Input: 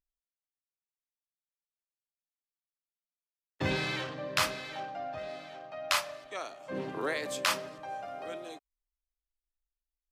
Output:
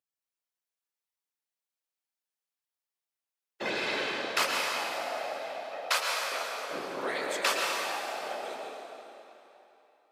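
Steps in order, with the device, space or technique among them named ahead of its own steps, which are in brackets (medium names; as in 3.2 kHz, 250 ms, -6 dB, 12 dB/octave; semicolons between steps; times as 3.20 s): whispering ghost (whisper effect; high-pass 360 Hz 12 dB/octave; reverberation RT60 3.2 s, pre-delay 105 ms, DRR -1 dB)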